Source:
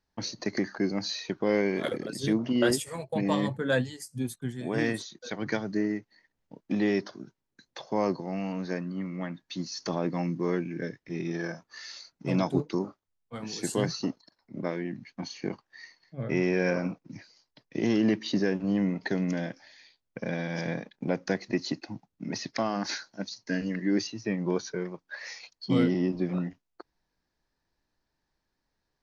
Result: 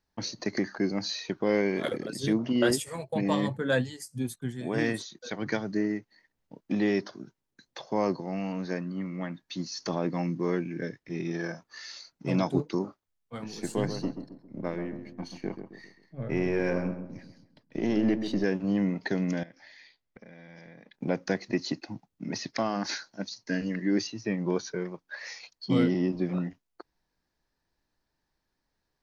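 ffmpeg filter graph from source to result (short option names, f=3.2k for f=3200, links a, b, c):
-filter_complex "[0:a]asettb=1/sr,asplit=3[a][b][c];[a]atrim=end=13.444[d];[b]atrim=start=13.44:end=18.44,asetpts=PTS-STARTPTS,afade=t=in:d=0.004:c=qsin,afade=t=out:st=4.996:d=0.004:c=qsin,aeval=exprs='if(lt(val(0),0),0.708*val(0),val(0))':c=same,highshelf=f=2.1k:g=-6,asplit=2[e][f];[f]adelay=134,lowpass=f=1.2k:p=1,volume=-8dB,asplit=2[g][h];[h]adelay=134,lowpass=f=1.2k:p=1,volume=0.43,asplit=2[i][j];[j]adelay=134,lowpass=f=1.2k:p=1,volume=0.43,asplit=2[k][l];[l]adelay=134,lowpass=f=1.2k:p=1,volume=0.43,asplit=2[m][n];[n]adelay=134,lowpass=f=1.2k:p=1,volume=0.43[o];[e][g][i][k][m][o]amix=inputs=6:normalize=0,atrim=end_sample=220500[p];[c]atrim=start=18.436[q];[d][p]acrossfade=d=0.004:c1=hsin:c2=qsin[r];[r][q]acrossfade=d=0.004:c1=qsin:c2=hsin,asettb=1/sr,asplit=3[s][t][u];[s]atrim=end=19.434[v];[t]atrim=start=19.43:end=20.94,asetpts=PTS-STARTPTS,afade=t=in:d=0.004:c=qsin,afade=t=out:st=1.506:d=0.004:c=qsin,lowpass=5.6k,equalizer=f=2k:t=o:w=0.24:g=7,acompressor=threshold=-45dB:ratio=20:attack=3.2:release=140:knee=1:detection=peak[w];[u]atrim=start=20.936[x];[v][w]acrossfade=d=0.004:c1=hsin:c2=qsin[y];[y][x]acrossfade=d=0.004:c1=qsin:c2=hsin"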